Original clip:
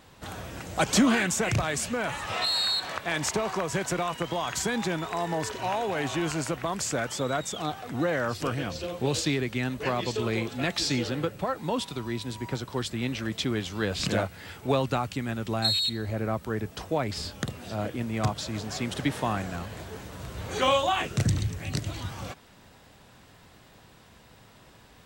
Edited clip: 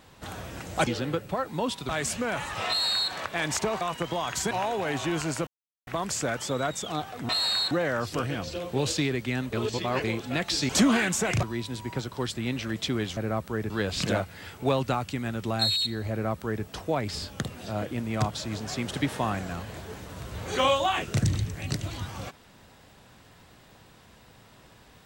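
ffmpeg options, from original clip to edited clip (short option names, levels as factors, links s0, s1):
-filter_complex "[0:a]asplit=14[s0][s1][s2][s3][s4][s5][s6][s7][s8][s9][s10][s11][s12][s13];[s0]atrim=end=0.872[s14];[s1]atrim=start=10.968:end=11.992[s15];[s2]atrim=start=1.608:end=3.532[s16];[s3]atrim=start=4.008:end=4.712[s17];[s4]atrim=start=5.608:end=6.57,asetpts=PTS-STARTPTS,afade=t=out:st=0.958:d=0.004:c=hsin,apad=pad_dur=0.4[s18];[s5]atrim=start=6.57:end=7.992,asetpts=PTS-STARTPTS,afade=t=in:d=0.004:c=hsin[s19];[s6]atrim=start=2.408:end=2.832[s20];[s7]atrim=start=7.988:end=9.812[s21];[s8]atrim=start=9.808:end=10.322,asetpts=PTS-STARTPTS,areverse[s22];[s9]atrim=start=10.318:end=10.972[s23];[s10]atrim=start=0.868:end=1.612[s24];[s11]atrim=start=11.988:end=13.732[s25];[s12]atrim=start=16.138:end=16.672[s26];[s13]atrim=start=13.728[s27];[s14][s15]acrossfade=d=0.004:c1=hsin:c2=hsin[s28];[s28][s16]acrossfade=d=0.004:c1=hsin:c2=hsin[s29];[s29][s17]acrossfade=d=0.004:c1=hsin:c2=hsin[s30];[s18][s19]concat=n=2:v=0:a=1[s31];[s30][s31]acrossfade=d=0.004:c1=hsin:c2=hsin[s32];[s32][s20]acrossfade=d=0.004:c1=hsin:c2=hsin[s33];[s33][s21]acrossfade=d=0.004:c1=hsin:c2=hsin[s34];[s34][s22]acrossfade=d=0.004:c1=hsin:c2=hsin[s35];[s35][s23]acrossfade=d=0.004:c1=hsin:c2=hsin[s36];[s36][s24]acrossfade=d=0.004:c1=hsin:c2=hsin[s37];[s37][s25]acrossfade=d=0.004:c1=hsin:c2=hsin[s38];[s38][s26]acrossfade=d=0.004:c1=hsin:c2=hsin[s39];[s39][s27]acrossfade=d=0.004:c1=hsin:c2=hsin"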